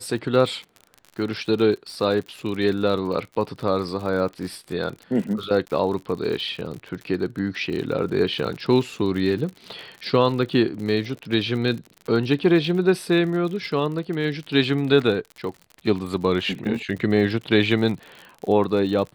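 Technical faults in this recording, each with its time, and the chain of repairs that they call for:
crackle 59 per s -31 dBFS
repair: de-click

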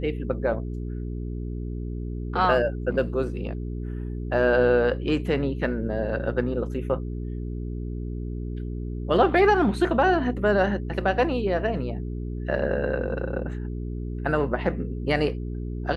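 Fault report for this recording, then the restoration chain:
hum 60 Hz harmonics 7 -31 dBFS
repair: de-hum 60 Hz, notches 7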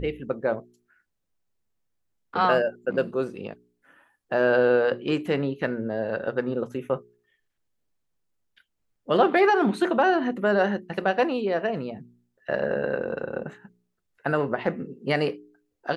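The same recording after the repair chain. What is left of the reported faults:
nothing left

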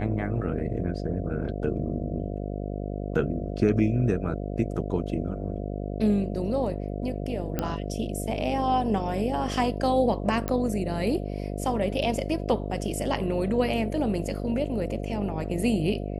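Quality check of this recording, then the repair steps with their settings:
buzz 50 Hz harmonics 14 -32 dBFS
7.59 s: pop -13 dBFS
10.48 s: pop -14 dBFS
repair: de-click; de-hum 50 Hz, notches 14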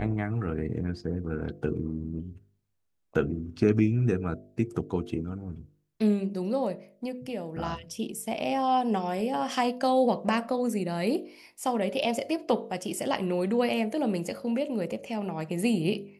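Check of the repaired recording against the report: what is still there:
nothing left

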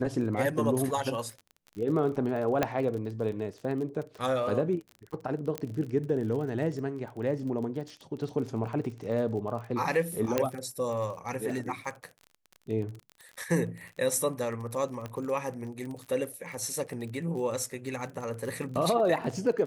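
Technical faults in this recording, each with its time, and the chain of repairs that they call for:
crackle 33 per s -37 dBFS
2.63 s: pop -11 dBFS
5.58 s: pop -16 dBFS
10.38 s: pop -11 dBFS
15.06 s: pop -23 dBFS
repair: de-click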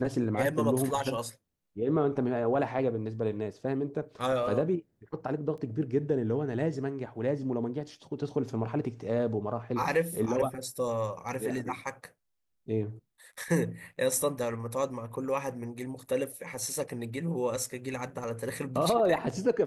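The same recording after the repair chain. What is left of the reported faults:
5.58 s: pop
15.06 s: pop

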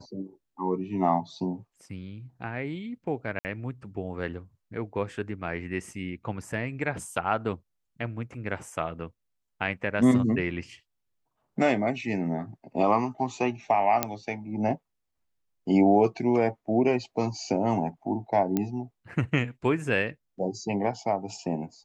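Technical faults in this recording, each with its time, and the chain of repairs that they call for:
3.39–3.45 s: dropout 59 ms
14.03 s: pop -7 dBFS
18.57 s: pop -13 dBFS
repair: de-click; interpolate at 3.39 s, 59 ms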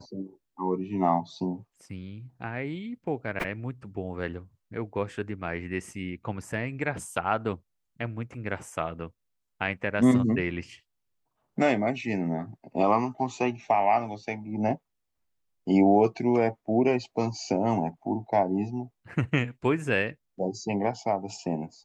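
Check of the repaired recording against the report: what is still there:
nothing left

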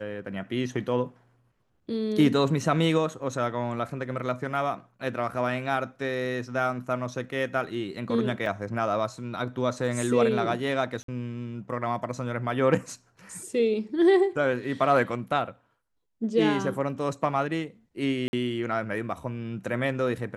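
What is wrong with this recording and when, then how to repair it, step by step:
8.46 s: dropout 2.2 ms
11.03–11.08 s: dropout 53 ms
18.28–18.33 s: dropout 51 ms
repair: interpolate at 8.46 s, 2.2 ms; interpolate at 11.03 s, 53 ms; interpolate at 18.28 s, 51 ms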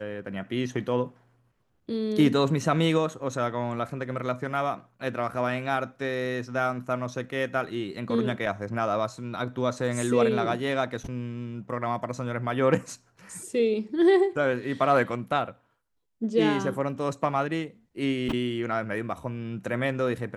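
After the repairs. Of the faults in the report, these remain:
nothing left

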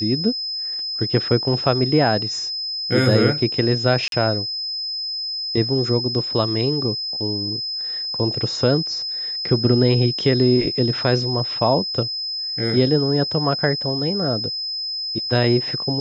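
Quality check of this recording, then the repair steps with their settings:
whine 5.1 kHz -24 dBFS
4.08–4.12 s: dropout 42 ms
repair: band-stop 5.1 kHz, Q 30; interpolate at 4.08 s, 42 ms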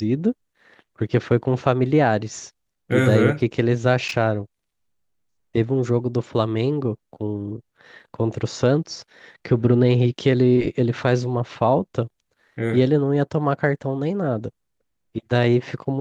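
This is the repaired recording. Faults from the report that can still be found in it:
nothing left

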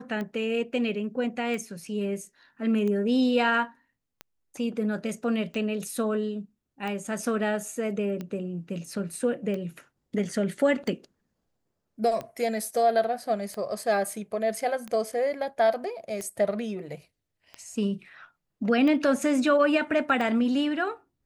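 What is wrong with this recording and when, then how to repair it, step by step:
tick 45 rpm -22 dBFS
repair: de-click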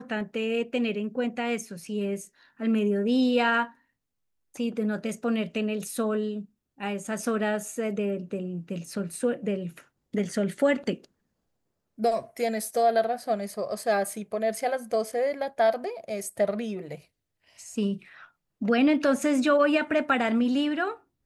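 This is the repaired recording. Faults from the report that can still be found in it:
nothing left

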